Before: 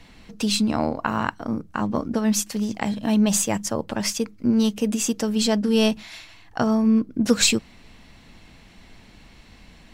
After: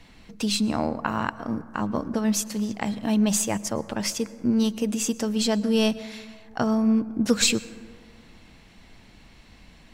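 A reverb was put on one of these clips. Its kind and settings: plate-style reverb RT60 2.1 s, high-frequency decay 0.3×, pre-delay 95 ms, DRR 17 dB; gain -2.5 dB

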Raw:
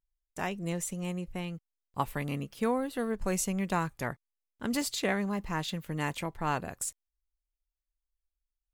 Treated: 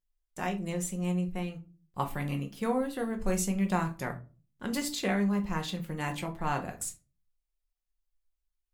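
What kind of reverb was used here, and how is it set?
shoebox room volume 160 m³, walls furnished, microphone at 0.95 m; gain -2 dB

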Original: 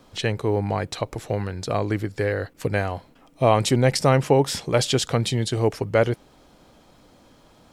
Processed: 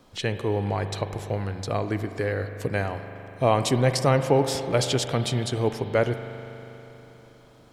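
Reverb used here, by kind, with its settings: spring tank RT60 3.7 s, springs 40 ms, chirp 70 ms, DRR 8.5 dB; gain -3 dB

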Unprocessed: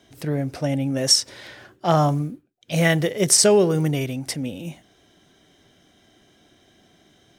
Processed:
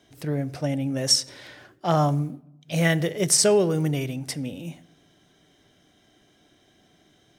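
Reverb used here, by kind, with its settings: shoebox room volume 3200 m³, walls furnished, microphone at 0.42 m; gain -3.5 dB

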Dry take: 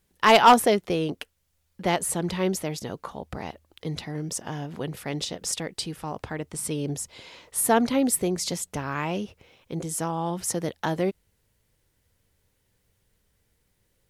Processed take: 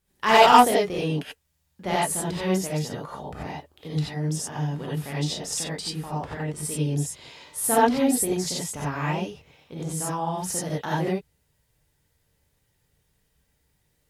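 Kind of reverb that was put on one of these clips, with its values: non-linear reverb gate 0.11 s rising, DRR -6.5 dB; gain -6.5 dB

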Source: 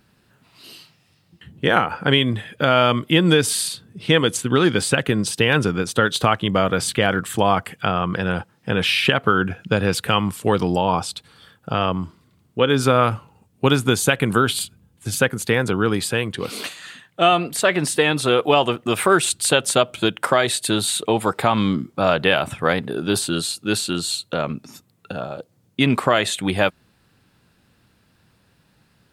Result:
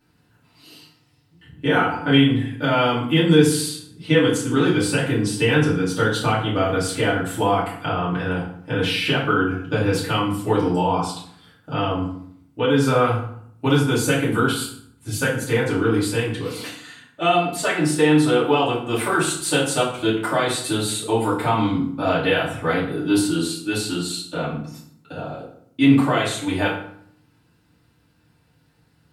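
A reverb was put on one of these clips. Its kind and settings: FDN reverb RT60 0.63 s, low-frequency decay 1.35×, high-frequency decay 0.7×, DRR -9 dB; gain -12 dB

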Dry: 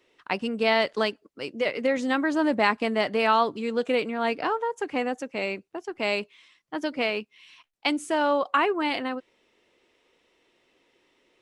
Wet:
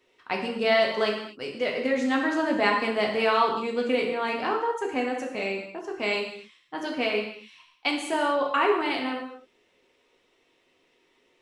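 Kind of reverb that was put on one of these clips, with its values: non-linear reverb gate 0.28 s falling, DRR -0.5 dB; gain -3 dB

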